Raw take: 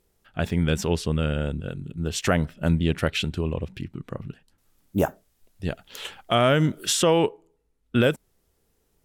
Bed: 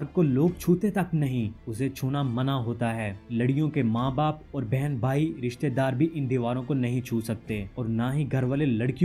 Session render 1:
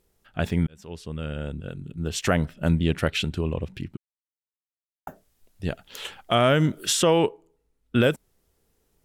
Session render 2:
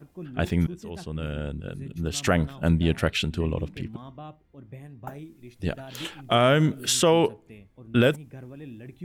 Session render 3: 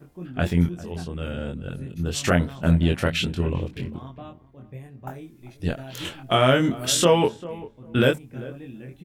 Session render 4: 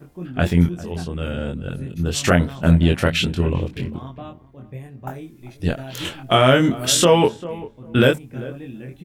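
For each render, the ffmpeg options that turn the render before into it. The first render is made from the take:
-filter_complex "[0:a]asplit=4[s0][s1][s2][s3];[s0]atrim=end=0.67,asetpts=PTS-STARTPTS,afade=t=out:st=0.666:d=0.004:c=hsin[s4];[s1]atrim=start=0.67:end=3.97,asetpts=PTS-STARTPTS,afade=t=in:d=2.03:c=qsin,afade=t=out:st=3.296:d=0.004:c=hsin[s5];[s2]atrim=start=3.97:end=5.07,asetpts=PTS-STARTPTS,volume=0[s6];[s3]atrim=start=5.07,asetpts=PTS-STARTPTS,afade=t=in:d=0.004:c=hsin[s7];[s4][s5][s6][s7]concat=n=4:v=0:a=1"
-filter_complex "[1:a]volume=0.15[s0];[0:a][s0]amix=inputs=2:normalize=0"
-filter_complex "[0:a]asplit=2[s0][s1];[s1]adelay=23,volume=0.708[s2];[s0][s2]amix=inputs=2:normalize=0,asplit=2[s3][s4];[s4]adelay=395,lowpass=f=1100:p=1,volume=0.15,asplit=2[s5][s6];[s6]adelay=395,lowpass=f=1100:p=1,volume=0.18[s7];[s3][s5][s7]amix=inputs=3:normalize=0"
-af "volume=1.68,alimiter=limit=0.708:level=0:latency=1"

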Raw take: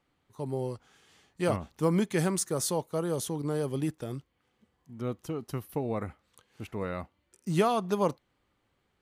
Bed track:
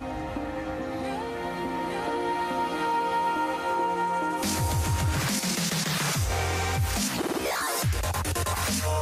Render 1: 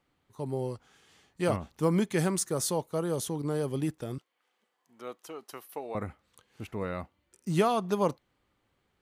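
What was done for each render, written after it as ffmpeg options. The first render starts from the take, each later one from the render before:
-filter_complex "[0:a]asettb=1/sr,asplit=3[s0][s1][s2];[s0]atrim=end=4.184[s3];[s1]atrim=start=4.18:end=5.95,asetpts=PTS-STARTPTS,afade=t=in:d=0.004:c=qsin,afade=t=out:st=1.766:d=0.004:c=qsin,highpass=570[s4];[s2]atrim=start=5.946[s5];[s3][s4]acrossfade=d=0.004:c1=hsin:c2=qsin[s6];[s6][s5]acrossfade=d=0.004:c1=qsin:c2=hsin"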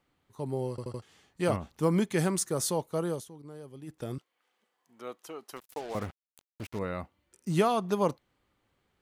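-filter_complex "[0:a]asettb=1/sr,asplit=3[s0][s1][s2];[s0]atrim=end=5.564[s3];[s1]atrim=start=5.56:end=6.79,asetpts=PTS-STARTPTS,afade=t=in:d=0.004:c=qsin,afade=t=out:st=1.226:d=0.004:c=qsin,acrusher=bits=6:mix=0:aa=0.5[s4];[s2]atrim=start=6.786[s5];[s3][s4]acrossfade=d=0.004:c1=hsin:c2=qsin[s6];[s6][s5]acrossfade=d=0.004:c1=qsin:c2=hsin,asplit=7[s7][s8][s9][s10][s11][s12][s13];[s7]atrim=end=0.782[s14];[s8]atrim=start=0.698:end=0.782[s15];[s9]atrim=start=0.698:end=0.782[s16];[s10]atrim=start=0.698:end=0.782[s17];[s11]atrim=start=1.018:end=3.25,asetpts=PTS-STARTPTS,afade=t=out:st=2.062:d=0.17:silence=0.177828[s18];[s12]atrim=start=3.25:end=3.86,asetpts=PTS-STARTPTS,volume=0.178[s19];[s13]atrim=start=3.86,asetpts=PTS-STARTPTS,afade=t=in:d=0.17:silence=0.177828[s20];[s14][s15]acrossfade=d=0.004:c1=hsin:c2=hsin[s21];[s21][s16]acrossfade=d=0.004:c1=hsin:c2=hsin[s22];[s22][s17]acrossfade=d=0.004:c1=hsin:c2=hsin[s23];[s18][s19][s20]concat=n=3:v=0:a=1[s24];[s23][s24]acrossfade=d=0.004:c1=hsin:c2=hsin"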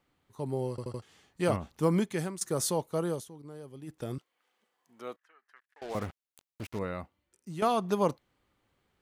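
-filter_complex "[0:a]asettb=1/sr,asplit=3[s0][s1][s2];[s0]atrim=end=5.164[s3];[s1]atrim=start=5.16:end=5.82,asetpts=PTS-STARTPTS,afade=t=in:d=0.004:c=qsin,afade=t=out:st=0.656:d=0.004:c=qsin,bandpass=f=1700:t=q:w=7.5[s4];[s2]atrim=start=5.816[s5];[s3][s4]acrossfade=d=0.004:c1=hsin:c2=qsin[s6];[s6][s5]acrossfade=d=0.004:c1=qsin:c2=hsin,asplit=3[s7][s8][s9];[s7]atrim=end=2.41,asetpts=PTS-STARTPTS,afade=t=out:st=1.92:d=0.49:silence=0.188365[s10];[s8]atrim=start=2.41:end=7.62,asetpts=PTS-STARTPTS,afade=t=in:d=0.004:c=hsin:silence=0.188365,afade=t=out:st=4.34:d=0.87:silence=0.199526[s11];[s9]atrim=start=7.62,asetpts=PTS-STARTPTS,afade=t=in:d=0.004:c=hsin:silence=0.199526[s12];[s10][s11][s12]concat=n=3:v=0:a=1"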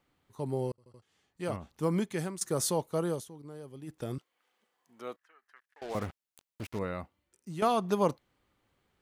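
-filter_complex "[0:a]asplit=2[s0][s1];[s0]atrim=end=0.72,asetpts=PTS-STARTPTS,afade=t=out:st=0.716:d=0.004:c=hsin[s2];[s1]atrim=start=0.72,asetpts=PTS-STARTPTS,afade=t=in:d=1.7[s3];[s2][s3]concat=n=2:v=0:a=1"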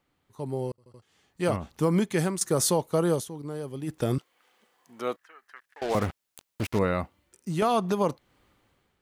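-af "dynaudnorm=f=770:g=3:m=3.35,alimiter=limit=0.188:level=0:latency=1:release=330"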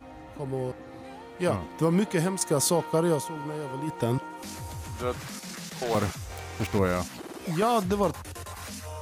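-filter_complex "[1:a]volume=0.251[s0];[0:a][s0]amix=inputs=2:normalize=0"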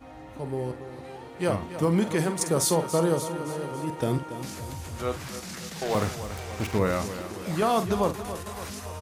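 -filter_complex "[0:a]asplit=2[s0][s1];[s1]adelay=48,volume=0.282[s2];[s0][s2]amix=inputs=2:normalize=0,aecho=1:1:283|566|849|1132|1415|1698:0.251|0.143|0.0816|0.0465|0.0265|0.0151"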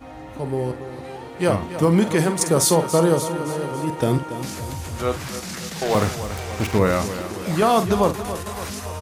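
-af "volume=2.11"

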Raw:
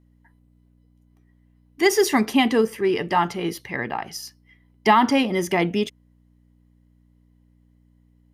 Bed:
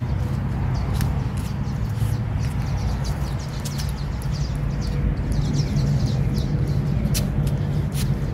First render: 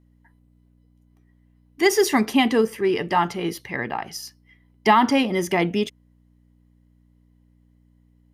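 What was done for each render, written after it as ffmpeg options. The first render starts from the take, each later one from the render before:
-af anull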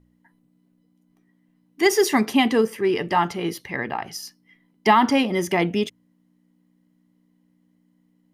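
-af "bandreject=f=60:t=h:w=4,bandreject=f=120:t=h:w=4"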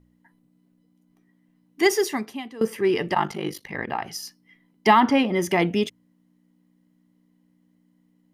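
-filter_complex "[0:a]asplit=3[s0][s1][s2];[s0]afade=t=out:st=3.14:d=0.02[s3];[s1]aeval=exprs='val(0)*sin(2*PI*25*n/s)':c=same,afade=t=in:st=3.14:d=0.02,afade=t=out:st=3.86:d=0.02[s4];[s2]afade=t=in:st=3.86:d=0.02[s5];[s3][s4][s5]amix=inputs=3:normalize=0,asettb=1/sr,asplit=3[s6][s7][s8];[s6]atrim=end=5.004[s9];[s7]atrim=start=5:end=5.42,asetpts=PTS-STARTPTS,afade=t=in:d=0.004:c=qsin,afade=t=out:st=0.416:d=0.004:c=qsin,bass=f=250:g=0,treble=f=4000:g=-9[s10];[s8]atrim=start=5.416[s11];[s9][s10]acrossfade=d=0.004:c1=hsin:c2=qsin[s12];[s12][s11]acrossfade=d=0.004:c1=qsin:c2=hsin,asplit=2[s13][s14];[s13]atrim=end=2.61,asetpts=PTS-STARTPTS,afade=t=out:st=1.82:d=0.79:c=qua:silence=0.0944061[s15];[s14]atrim=start=2.61,asetpts=PTS-STARTPTS,afade=t=in:d=0.004:c=hsin:silence=0.0944061[s16];[s15][s16]concat=n=2:v=0:a=1"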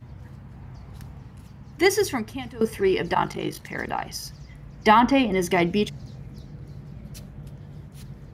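-filter_complex "[1:a]volume=0.119[s0];[0:a][s0]amix=inputs=2:normalize=0"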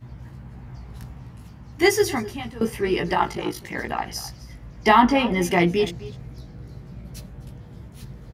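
-filter_complex "[0:a]asplit=2[s0][s1];[s1]adelay=17,volume=0.708[s2];[s0][s2]amix=inputs=2:normalize=0,asplit=2[s3][s4];[s4]adelay=256.6,volume=0.141,highshelf=f=4000:g=-5.77[s5];[s3][s5]amix=inputs=2:normalize=0"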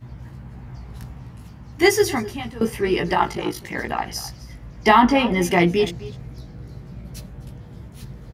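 -af "volume=1.26,alimiter=limit=0.708:level=0:latency=1"

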